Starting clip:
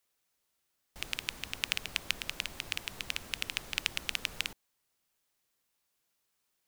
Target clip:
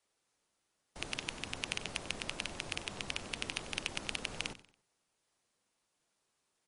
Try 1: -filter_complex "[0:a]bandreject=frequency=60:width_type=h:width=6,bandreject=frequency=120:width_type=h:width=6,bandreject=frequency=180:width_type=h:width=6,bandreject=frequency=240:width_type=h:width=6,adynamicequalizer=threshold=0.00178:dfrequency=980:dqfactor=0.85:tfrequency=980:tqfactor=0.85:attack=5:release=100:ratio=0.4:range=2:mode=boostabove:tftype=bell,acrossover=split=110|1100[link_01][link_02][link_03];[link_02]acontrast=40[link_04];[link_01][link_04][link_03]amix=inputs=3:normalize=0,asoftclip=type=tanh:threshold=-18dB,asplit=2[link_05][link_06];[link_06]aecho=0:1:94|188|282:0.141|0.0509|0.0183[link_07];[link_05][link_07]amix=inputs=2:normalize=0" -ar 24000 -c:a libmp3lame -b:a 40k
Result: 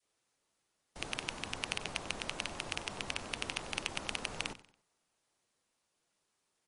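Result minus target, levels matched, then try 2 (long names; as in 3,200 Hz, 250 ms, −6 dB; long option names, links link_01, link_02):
1,000 Hz band +3.0 dB
-filter_complex "[0:a]bandreject=frequency=60:width_type=h:width=6,bandreject=frequency=120:width_type=h:width=6,bandreject=frequency=180:width_type=h:width=6,bandreject=frequency=240:width_type=h:width=6,acrossover=split=110|1100[link_01][link_02][link_03];[link_02]acontrast=40[link_04];[link_01][link_04][link_03]amix=inputs=3:normalize=0,asoftclip=type=tanh:threshold=-18dB,asplit=2[link_05][link_06];[link_06]aecho=0:1:94|188|282:0.141|0.0509|0.0183[link_07];[link_05][link_07]amix=inputs=2:normalize=0" -ar 24000 -c:a libmp3lame -b:a 40k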